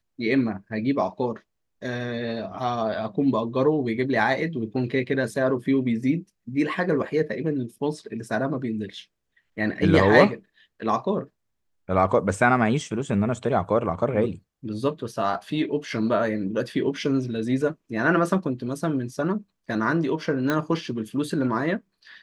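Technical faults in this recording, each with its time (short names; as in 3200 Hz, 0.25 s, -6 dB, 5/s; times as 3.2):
20.5 pop -11 dBFS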